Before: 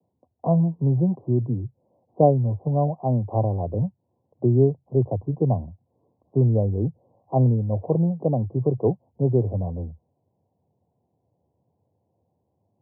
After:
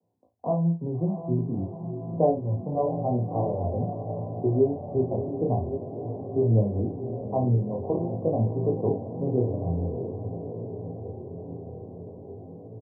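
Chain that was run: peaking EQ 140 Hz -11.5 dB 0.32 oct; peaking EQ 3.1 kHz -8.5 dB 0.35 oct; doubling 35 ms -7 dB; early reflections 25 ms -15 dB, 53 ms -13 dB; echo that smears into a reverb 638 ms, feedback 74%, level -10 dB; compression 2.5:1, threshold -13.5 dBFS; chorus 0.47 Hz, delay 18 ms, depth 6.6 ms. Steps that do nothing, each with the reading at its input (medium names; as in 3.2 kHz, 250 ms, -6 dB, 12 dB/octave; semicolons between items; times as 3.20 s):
peaking EQ 3.1 kHz: input has nothing above 850 Hz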